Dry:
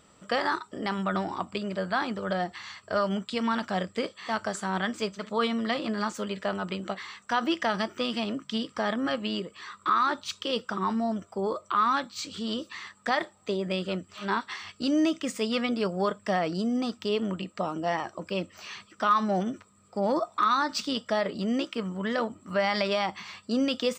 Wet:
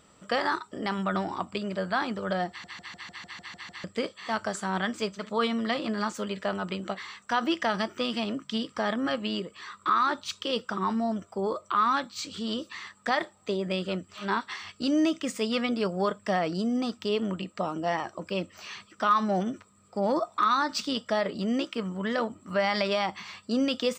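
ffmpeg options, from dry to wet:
-filter_complex "[0:a]asplit=10[s0][s1][s2][s3][s4][s5][s6][s7][s8][s9];[s0]atrim=end=2.642[s10];[s1]atrim=start=2.488:end=2.642[s11];[s2]atrim=start=2.488:end=2.642[s12];[s3]atrim=start=2.488:end=2.642[s13];[s4]atrim=start=2.488:end=2.642[s14];[s5]atrim=start=2.488:end=2.642[s15];[s6]atrim=start=2.488:end=2.642[s16];[s7]atrim=start=2.488:end=2.642[s17];[s8]atrim=start=2.488:end=2.642[s18];[s9]atrim=start=3.838[s19];[s10][s11]acrossfade=d=0.004:c1=hsin:c2=hsin[s20];[s20][s12]acrossfade=d=0.004:c1=hsin:c2=hsin[s21];[s21][s13]acrossfade=d=0.004:c1=hsin:c2=hsin[s22];[s22][s14]acrossfade=d=0.004:c1=hsin:c2=hsin[s23];[s23][s15]acrossfade=d=0.004:c1=hsin:c2=hsin[s24];[s24][s16]acrossfade=d=0.004:c1=hsin:c2=hsin[s25];[s25][s17]acrossfade=d=0.004:c1=hsin:c2=hsin[s26];[s26][s18]acrossfade=d=0.004:c1=hsin:c2=hsin[s27];[s27][s19]acrossfade=d=0.004:c1=hsin:c2=hsin"

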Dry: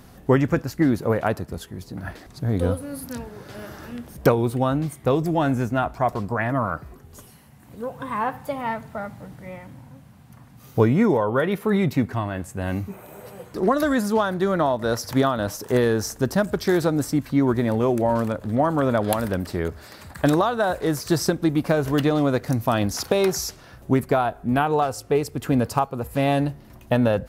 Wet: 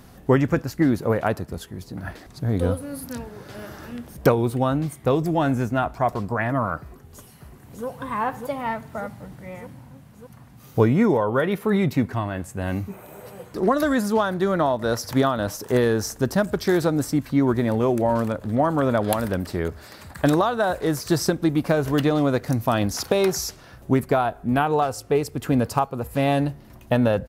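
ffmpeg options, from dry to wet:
-filter_complex "[0:a]asplit=2[s0][s1];[s1]afade=t=in:st=6.8:d=0.01,afade=t=out:st=7.86:d=0.01,aecho=0:1:600|1200|1800|2400|3000|3600|4200|4800|5400|6000|6600|7200:0.630957|0.44167|0.309169|0.216418|0.151493|0.106045|0.0742315|0.0519621|0.0363734|0.0254614|0.017823|0.0124761[s2];[s0][s2]amix=inputs=2:normalize=0"

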